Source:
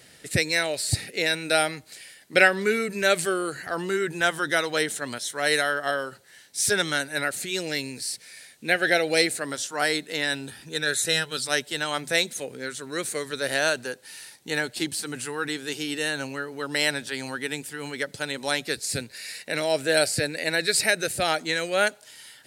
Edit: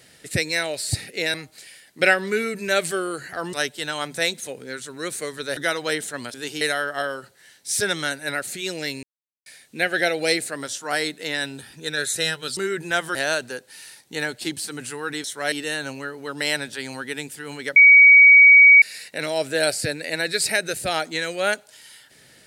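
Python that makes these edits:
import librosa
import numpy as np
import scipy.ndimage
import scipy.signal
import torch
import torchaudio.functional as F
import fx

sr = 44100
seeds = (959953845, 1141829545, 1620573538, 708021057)

y = fx.edit(x, sr, fx.cut(start_s=1.34, length_s=0.34),
    fx.swap(start_s=3.87, length_s=0.58, other_s=11.46, other_length_s=2.04),
    fx.swap(start_s=5.22, length_s=0.28, other_s=15.59, other_length_s=0.27),
    fx.silence(start_s=7.92, length_s=0.43),
    fx.bleep(start_s=18.1, length_s=1.06, hz=2260.0, db=-6.5), tone=tone)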